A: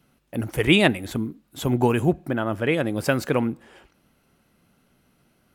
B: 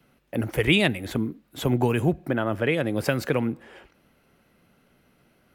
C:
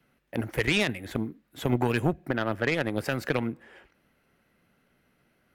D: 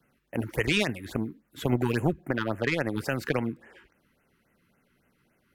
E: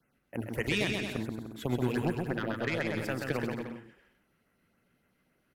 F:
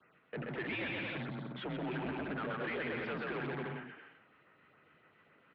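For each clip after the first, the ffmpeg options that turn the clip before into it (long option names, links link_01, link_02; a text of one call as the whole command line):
ffmpeg -i in.wav -filter_complex "[0:a]equalizer=frequency=500:width_type=o:width=1:gain=4,equalizer=frequency=2000:width_type=o:width=1:gain=4,equalizer=frequency=8000:width_type=o:width=1:gain=-4,acrossover=split=190|3000[link_01][link_02][link_03];[link_02]acompressor=threshold=-22dB:ratio=4[link_04];[link_01][link_04][link_03]amix=inputs=3:normalize=0" out.wav
ffmpeg -i in.wav -af "equalizer=frequency=1800:width=2.2:gain=5,alimiter=limit=-13dB:level=0:latency=1:release=31,aeval=exprs='0.224*(cos(1*acos(clip(val(0)/0.224,-1,1)))-cos(1*PI/2))+0.0398*(cos(3*acos(clip(val(0)/0.224,-1,1)))-cos(3*PI/2))':channel_layout=same" out.wav
ffmpeg -i in.wav -af "afftfilt=real='re*(1-between(b*sr/1024,580*pow(4500/580,0.5+0.5*sin(2*PI*3.6*pts/sr))/1.41,580*pow(4500/580,0.5+0.5*sin(2*PI*3.6*pts/sr))*1.41))':imag='im*(1-between(b*sr/1024,580*pow(4500/580,0.5+0.5*sin(2*PI*3.6*pts/sr))/1.41,580*pow(4500/580,0.5+0.5*sin(2*PI*3.6*pts/sr))*1.41))':win_size=1024:overlap=0.75" out.wav
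ffmpeg -i in.wav -af "aecho=1:1:130|227.5|300.6|355.5|396.6:0.631|0.398|0.251|0.158|0.1,volume=-6dB" out.wav
ffmpeg -i in.wav -filter_complex "[0:a]asoftclip=type=tanh:threshold=-27dB,asplit=2[link_01][link_02];[link_02]highpass=frequency=720:poles=1,volume=23dB,asoftclip=type=tanh:threshold=-27dB[link_03];[link_01][link_03]amix=inputs=2:normalize=0,lowpass=frequency=2700:poles=1,volume=-6dB,highpass=frequency=220:width_type=q:width=0.5412,highpass=frequency=220:width_type=q:width=1.307,lowpass=frequency=3600:width_type=q:width=0.5176,lowpass=frequency=3600:width_type=q:width=0.7071,lowpass=frequency=3600:width_type=q:width=1.932,afreqshift=-91,volume=-4.5dB" out.wav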